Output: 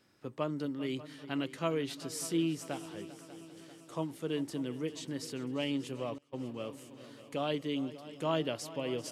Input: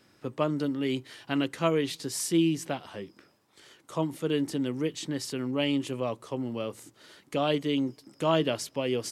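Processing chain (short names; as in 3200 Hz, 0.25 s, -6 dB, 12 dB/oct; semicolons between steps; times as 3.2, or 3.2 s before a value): multi-head echo 0.197 s, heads second and third, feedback 62%, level -17 dB; 6.18–6.72 gate -33 dBFS, range -23 dB; gain -7 dB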